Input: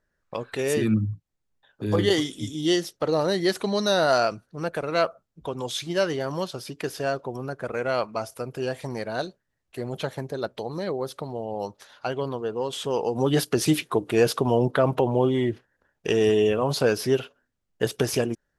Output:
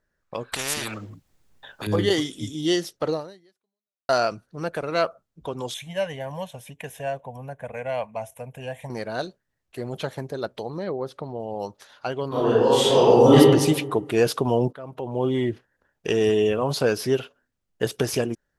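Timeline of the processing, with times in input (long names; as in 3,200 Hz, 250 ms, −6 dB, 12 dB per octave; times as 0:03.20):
0:00.52–0:01.87: every bin compressed towards the loudest bin 4 to 1
0:03.11–0:04.09: fade out exponential
0:05.74–0:08.90: phaser with its sweep stopped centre 1,300 Hz, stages 6
0:10.70–0:11.40: low-pass filter 2,300 Hz 6 dB per octave
0:12.28–0:13.35: thrown reverb, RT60 1.2 s, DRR −11.5 dB
0:14.73–0:15.32: fade in quadratic, from −19 dB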